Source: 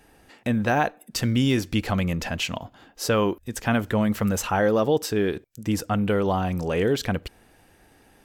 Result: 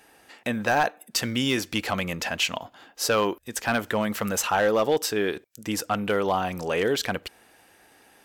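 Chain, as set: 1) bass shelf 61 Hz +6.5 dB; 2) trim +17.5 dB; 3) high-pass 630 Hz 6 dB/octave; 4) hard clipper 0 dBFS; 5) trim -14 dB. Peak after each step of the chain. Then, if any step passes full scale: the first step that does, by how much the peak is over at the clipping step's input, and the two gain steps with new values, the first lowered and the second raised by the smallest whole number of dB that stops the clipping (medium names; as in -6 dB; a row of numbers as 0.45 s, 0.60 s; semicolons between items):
-9.0 dBFS, +8.5 dBFS, +8.5 dBFS, 0.0 dBFS, -14.0 dBFS; step 2, 8.5 dB; step 2 +8.5 dB, step 5 -5 dB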